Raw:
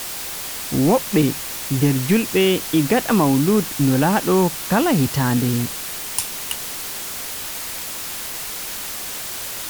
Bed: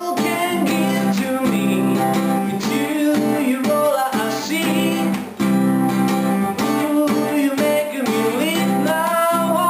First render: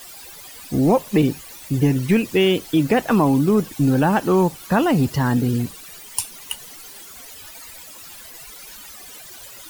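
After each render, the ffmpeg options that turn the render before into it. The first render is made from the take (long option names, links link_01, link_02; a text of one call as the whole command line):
ffmpeg -i in.wav -af "afftdn=noise_reduction=15:noise_floor=-30" out.wav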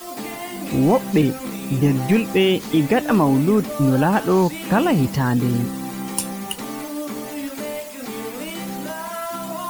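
ffmpeg -i in.wav -i bed.wav -filter_complex "[1:a]volume=-12dB[link_01];[0:a][link_01]amix=inputs=2:normalize=0" out.wav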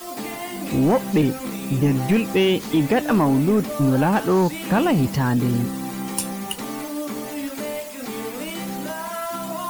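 ffmpeg -i in.wav -af "asoftclip=type=tanh:threshold=-9.5dB" out.wav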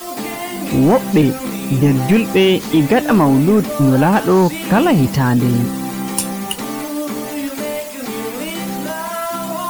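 ffmpeg -i in.wav -af "volume=6dB" out.wav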